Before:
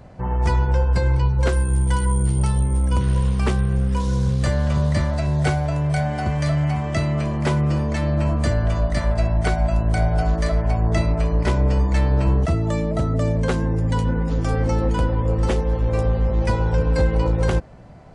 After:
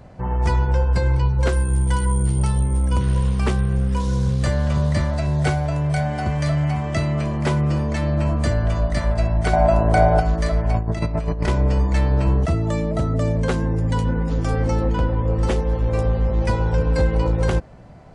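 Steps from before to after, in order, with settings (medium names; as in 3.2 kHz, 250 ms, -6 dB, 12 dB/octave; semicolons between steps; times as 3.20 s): 9.53–10.20 s: peaking EQ 660 Hz +11 dB 2.6 oct; 10.74–11.48 s: compressor with a negative ratio -21 dBFS, ratio -0.5; 14.83–15.35 s: distance through air 100 m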